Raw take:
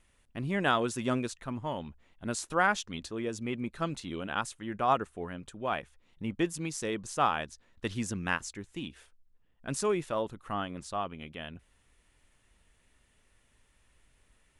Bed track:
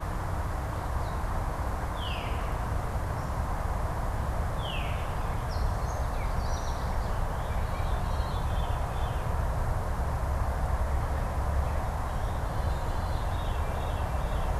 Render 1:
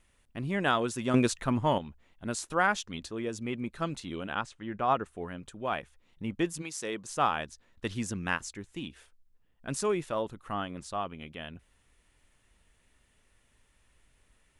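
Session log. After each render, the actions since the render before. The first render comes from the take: 1.14–1.78 gain +8.5 dB; 4.34–5.06 air absorption 110 m; 6.61–7.08 HPF 690 Hz -> 190 Hz 6 dB/oct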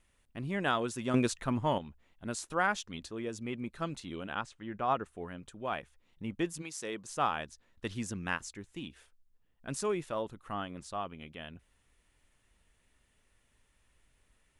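gain -3.5 dB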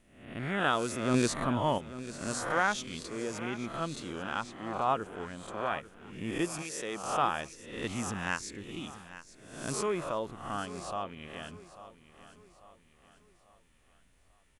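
spectral swells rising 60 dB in 0.69 s; feedback echo 0.844 s, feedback 44%, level -15 dB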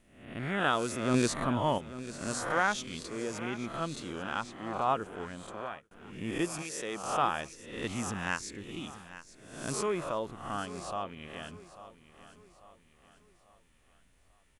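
5.4–5.91 fade out linear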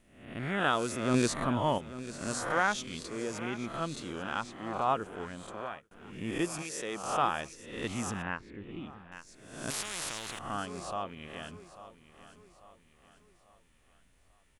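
8.22–9.12 air absorption 490 m; 9.7–10.39 spectral compressor 10:1

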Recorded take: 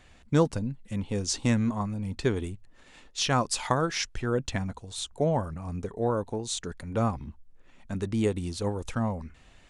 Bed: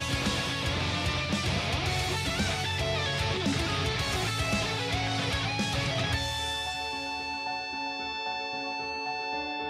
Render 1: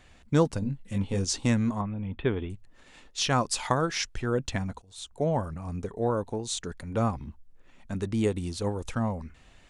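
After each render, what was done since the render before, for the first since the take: 0.6–1.25 doubler 21 ms -4 dB; 1.81–2.5 Chebyshev low-pass 3500 Hz, order 6; 4.82–5.51 fade in equal-power, from -20.5 dB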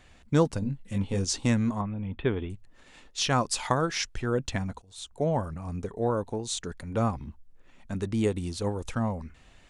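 nothing audible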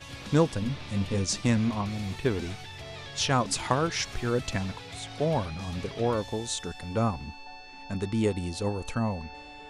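add bed -12.5 dB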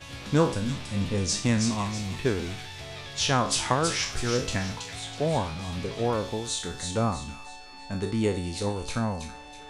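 spectral trails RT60 0.41 s; thin delay 0.325 s, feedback 38%, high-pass 2800 Hz, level -4 dB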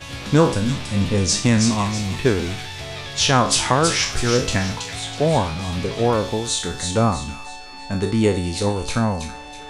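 gain +8 dB; limiter -3 dBFS, peak gain reduction 2.5 dB

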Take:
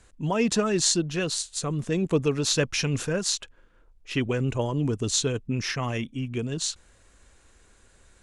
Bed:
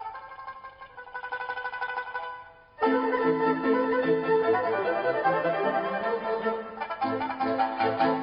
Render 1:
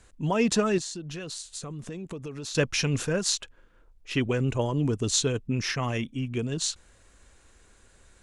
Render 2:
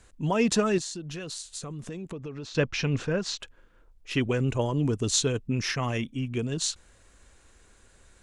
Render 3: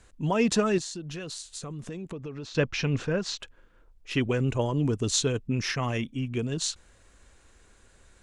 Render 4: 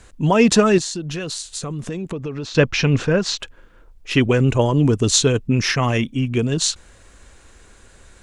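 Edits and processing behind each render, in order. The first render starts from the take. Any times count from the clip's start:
0.78–2.55 compressor, threshold -34 dBFS
2.11–3.4 air absorption 140 m
high shelf 8500 Hz -4 dB
gain +10 dB; limiter -1 dBFS, peak gain reduction 2 dB

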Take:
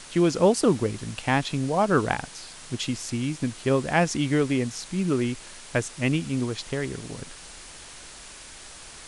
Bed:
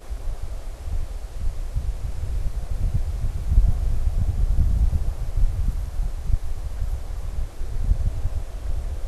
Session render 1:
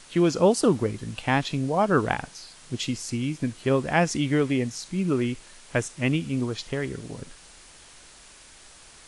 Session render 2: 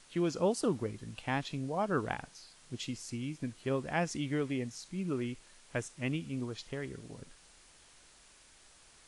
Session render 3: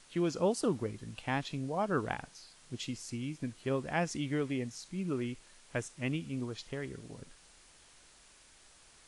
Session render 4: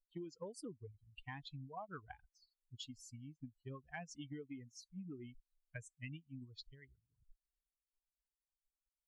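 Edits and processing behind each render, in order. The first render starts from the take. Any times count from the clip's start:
noise print and reduce 6 dB
gain -10.5 dB
nothing audible
per-bin expansion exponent 3; compressor 16:1, threshold -44 dBFS, peak gain reduction 17.5 dB

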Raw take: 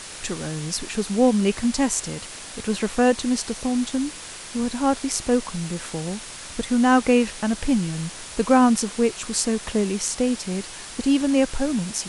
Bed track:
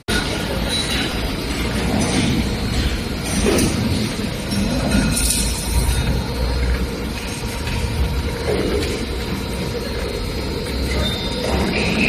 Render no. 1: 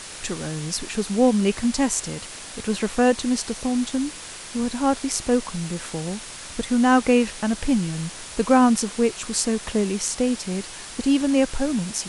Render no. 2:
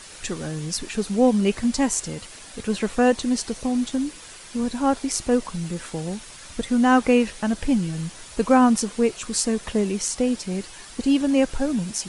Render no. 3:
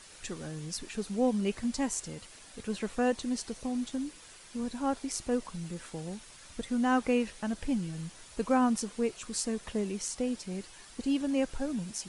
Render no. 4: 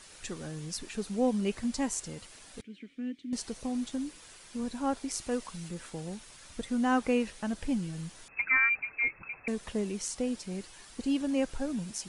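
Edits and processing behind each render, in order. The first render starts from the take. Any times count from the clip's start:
nothing audible
denoiser 7 dB, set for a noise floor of -38 dBFS
gain -10 dB
2.61–3.33 vowel filter i; 5.19–5.69 tilt shelf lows -3 dB; 8.28–9.48 inverted band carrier 2600 Hz

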